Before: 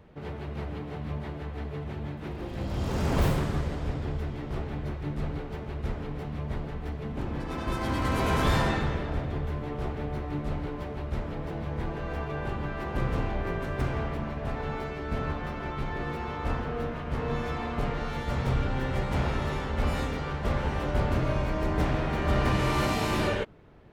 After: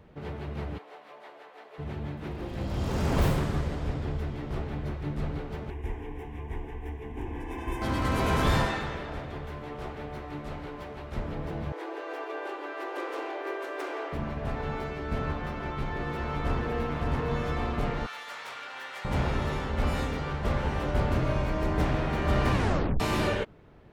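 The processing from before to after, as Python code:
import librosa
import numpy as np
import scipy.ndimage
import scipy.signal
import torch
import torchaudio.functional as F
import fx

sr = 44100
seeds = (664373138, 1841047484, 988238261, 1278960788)

y = fx.ladder_highpass(x, sr, hz=430.0, resonance_pct=20, at=(0.77, 1.78), fade=0.02)
y = fx.fixed_phaser(y, sr, hz=880.0, stages=8, at=(5.7, 7.82))
y = fx.low_shelf(y, sr, hz=350.0, db=-9.0, at=(8.65, 11.16))
y = fx.steep_highpass(y, sr, hz=300.0, slope=96, at=(11.72, 14.13))
y = fx.echo_throw(y, sr, start_s=15.59, length_s=1.05, ms=560, feedback_pct=70, wet_db=-3.5)
y = fx.highpass(y, sr, hz=1200.0, slope=12, at=(18.06, 19.05))
y = fx.edit(y, sr, fx.tape_stop(start_s=22.53, length_s=0.47), tone=tone)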